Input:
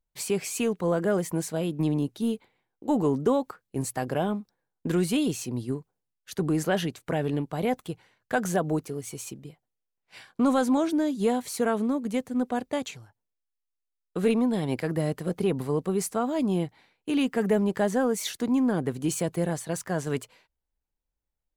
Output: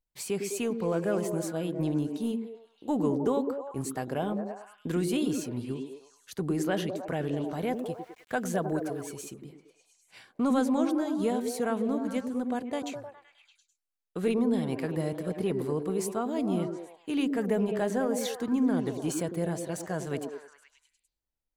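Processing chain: repeats whose band climbs or falls 103 ms, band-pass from 290 Hz, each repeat 0.7 oct, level -2 dB; 7.47–9.13 s: small samples zeroed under -52.5 dBFS; trim -4.5 dB

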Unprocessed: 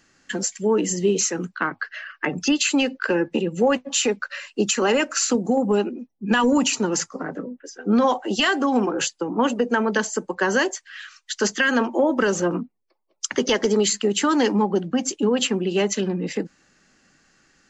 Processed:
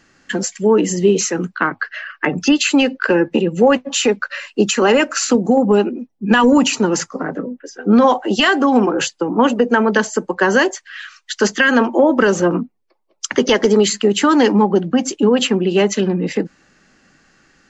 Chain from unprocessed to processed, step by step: treble shelf 5.6 kHz -9 dB; trim +7 dB

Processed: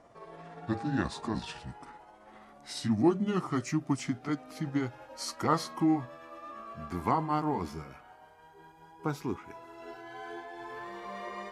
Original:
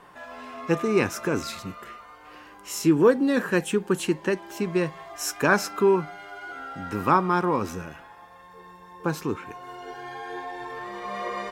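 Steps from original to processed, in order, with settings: pitch bend over the whole clip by -7.5 st ending unshifted; trim -6 dB

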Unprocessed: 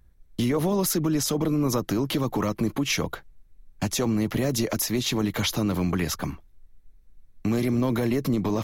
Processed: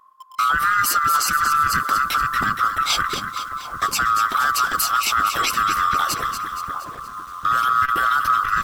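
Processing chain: split-band scrambler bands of 1 kHz; two-band feedback delay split 1.3 kHz, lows 751 ms, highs 235 ms, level -8 dB; in parallel at -6 dB: bit crusher 7-bit; on the sum: transformer saturation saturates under 440 Hz; trim +1.5 dB

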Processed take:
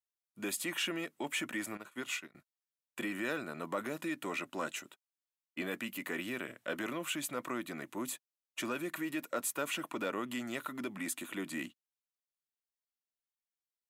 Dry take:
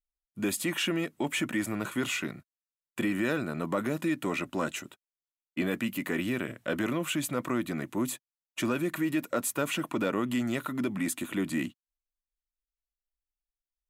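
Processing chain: high-pass 470 Hz 6 dB/octave; 1.77–2.35 s: upward expansion 2.5:1, over -43 dBFS; trim -4 dB

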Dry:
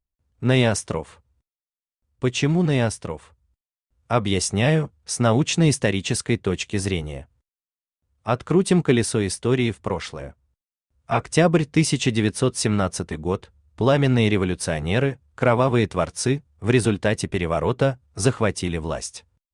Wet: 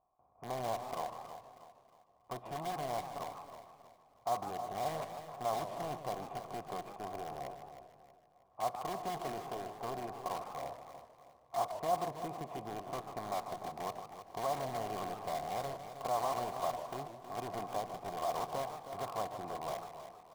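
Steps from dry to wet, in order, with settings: spectral levelling over time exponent 0.6; cascade formant filter a; in parallel at -5 dB: integer overflow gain 31.5 dB; on the sum: band-stop 2.6 kHz, Q 11; tempo 0.96×; feedback delay 318 ms, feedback 40%, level -11 dB; on a send at -18 dB: reverberation RT60 1.3 s, pre-delay 4 ms; on the sum: modulated delay 148 ms, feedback 35%, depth 214 cents, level -10.5 dB; trim -6.5 dB

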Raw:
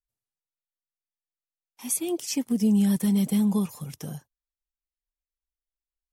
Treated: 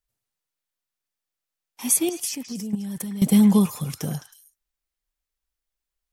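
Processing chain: 2.09–3.22 s: level held to a coarse grid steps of 19 dB; repeats whose band climbs or falls 106 ms, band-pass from 1.6 kHz, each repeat 1.4 oct, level -5 dB; trim +7.5 dB

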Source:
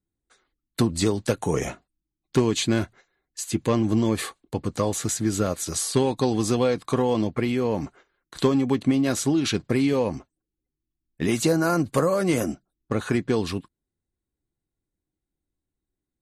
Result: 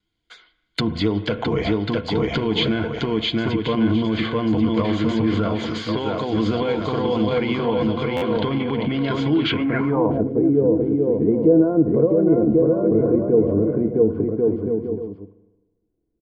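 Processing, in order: vibrato 0.45 Hz 8 cents; bouncing-ball echo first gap 660 ms, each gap 0.65×, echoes 5; spring tank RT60 1.1 s, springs 36/50 ms, chirp 60 ms, DRR 16 dB; low-pass that closes with the level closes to 2.5 kHz, closed at -22 dBFS; peak limiter -18 dBFS, peak gain reduction 10.5 dB; 5.60–6.33 s: bass shelf 160 Hz -7.5 dB; low-pass sweep 3.5 kHz -> 450 Hz, 9.46–10.31 s; rippled EQ curve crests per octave 1.8, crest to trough 9 dB; buffer glitch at 8.16 s, samples 512, times 4; tape noise reduction on one side only encoder only; trim +4.5 dB

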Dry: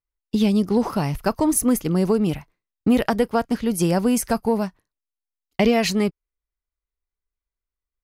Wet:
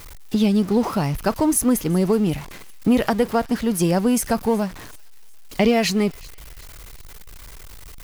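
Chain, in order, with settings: jump at every zero crossing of -31.5 dBFS; on a send: feedback echo behind a high-pass 373 ms, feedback 45%, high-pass 2.5 kHz, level -21 dB

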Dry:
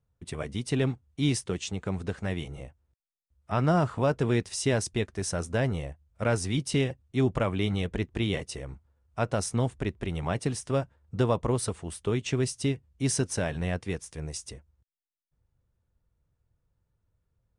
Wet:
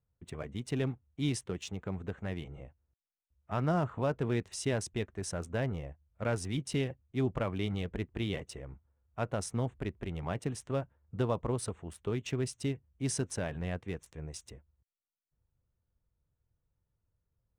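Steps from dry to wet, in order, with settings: local Wiener filter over 9 samples; trim -6 dB

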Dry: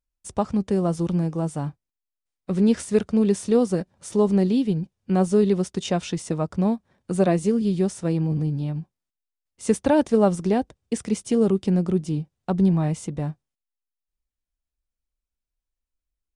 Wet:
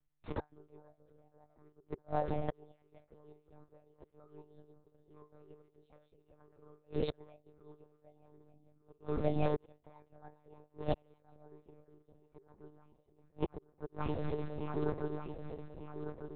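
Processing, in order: backward echo that repeats 598 ms, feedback 63%, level -11 dB; formant shift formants +5 st; inharmonic resonator 130 Hz, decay 0.23 s, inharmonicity 0.002; inverted gate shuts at -34 dBFS, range -41 dB; monotone LPC vocoder at 8 kHz 150 Hz; tape noise reduction on one side only decoder only; trim +14.5 dB

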